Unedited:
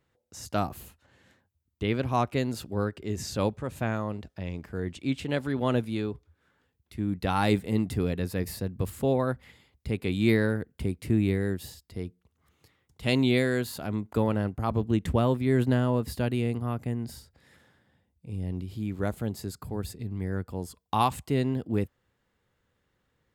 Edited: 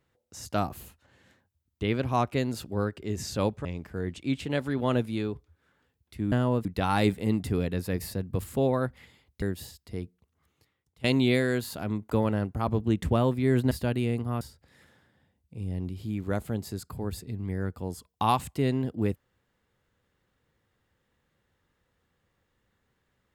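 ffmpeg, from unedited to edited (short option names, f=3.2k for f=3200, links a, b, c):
-filter_complex "[0:a]asplit=8[a][b][c][d][e][f][g][h];[a]atrim=end=3.652[i];[b]atrim=start=4.438:end=7.112[j];[c]atrim=start=15.738:end=16.072[k];[d]atrim=start=7.108:end=9.882[l];[e]atrim=start=11.448:end=13.07,asetpts=PTS-STARTPTS,afade=t=out:st=0.602:d=1.02:silence=0.141254[m];[f]atrim=start=13.07:end=15.742,asetpts=PTS-STARTPTS,afade=t=in:d=0.004:c=hsin:silence=0.141254[n];[g]atrim=start=16.068:end=16.772[o];[h]atrim=start=17.128[p];[i][j]acrossfade=d=0.004:c1=hsin:c2=hsin[q];[q][k]acrossfade=d=0.004:c1=hsin:c2=hsin[r];[r][l]acrossfade=d=0.004:c1=hsin:c2=hsin[s];[m][n]concat=n=2:v=0:a=1[t];[s][t]acrossfade=d=0.004:c1=hsin:c2=hsin[u];[u][o]acrossfade=d=0.004:c1=hsin:c2=hsin[v];[v][p]acrossfade=d=0.004:c1=hsin:c2=hsin"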